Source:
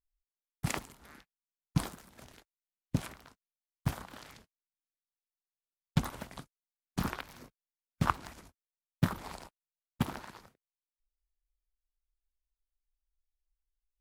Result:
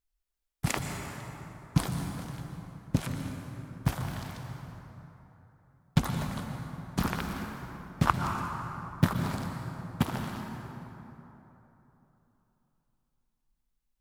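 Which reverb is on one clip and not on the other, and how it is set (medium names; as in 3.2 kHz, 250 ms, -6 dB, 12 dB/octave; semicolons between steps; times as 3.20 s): plate-style reverb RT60 3.5 s, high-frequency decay 0.5×, pre-delay 110 ms, DRR 3.5 dB; trim +4 dB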